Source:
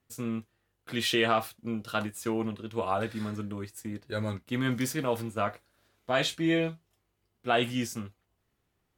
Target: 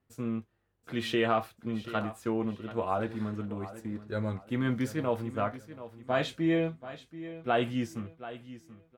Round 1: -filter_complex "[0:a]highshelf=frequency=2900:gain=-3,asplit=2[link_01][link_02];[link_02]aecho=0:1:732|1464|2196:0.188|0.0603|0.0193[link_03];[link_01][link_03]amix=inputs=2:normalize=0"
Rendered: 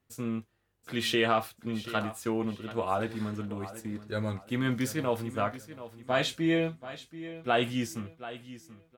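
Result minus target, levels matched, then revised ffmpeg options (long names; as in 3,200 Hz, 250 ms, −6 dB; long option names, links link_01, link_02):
8,000 Hz band +8.0 dB
-filter_complex "[0:a]highshelf=frequency=2900:gain=-13.5,asplit=2[link_01][link_02];[link_02]aecho=0:1:732|1464|2196:0.188|0.0603|0.0193[link_03];[link_01][link_03]amix=inputs=2:normalize=0"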